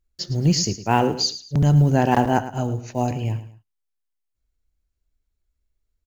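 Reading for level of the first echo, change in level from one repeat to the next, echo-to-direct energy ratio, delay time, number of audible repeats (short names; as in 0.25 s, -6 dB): -13.5 dB, -10.0 dB, -13.0 dB, 0.109 s, 2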